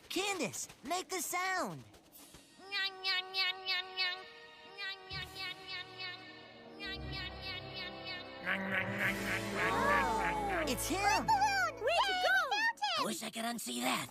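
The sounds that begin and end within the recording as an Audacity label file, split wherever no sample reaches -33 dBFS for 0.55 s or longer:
2.720000	4.140000	sound
4.800000	6.100000	sound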